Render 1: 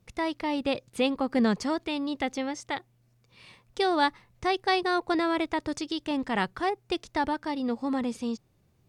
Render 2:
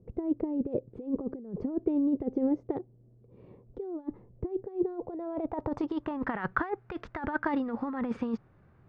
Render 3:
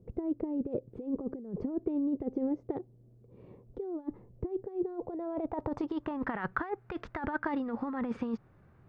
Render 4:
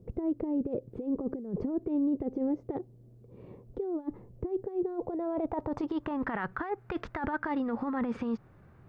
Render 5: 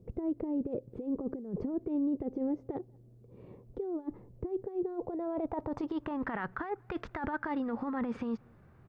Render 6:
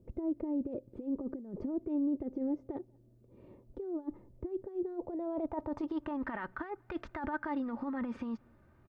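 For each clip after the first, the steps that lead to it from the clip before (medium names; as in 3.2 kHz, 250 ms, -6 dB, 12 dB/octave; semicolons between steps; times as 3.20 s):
compressor with a negative ratio -32 dBFS, ratio -0.5; low-pass sweep 420 Hz -> 1.5 kHz, 4.79–6.36 s
compression 2:1, threshold -31 dBFS, peak gain reduction 5.5 dB
peak limiter -27 dBFS, peak gain reduction 10 dB; trim +4 dB
echo from a far wall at 33 m, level -30 dB; trim -2.5 dB
comb 3.3 ms, depth 47%; trim -4 dB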